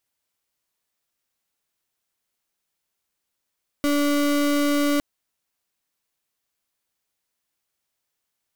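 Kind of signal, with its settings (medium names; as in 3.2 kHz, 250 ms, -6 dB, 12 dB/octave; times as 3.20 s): pulse 289 Hz, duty 34% -20.5 dBFS 1.16 s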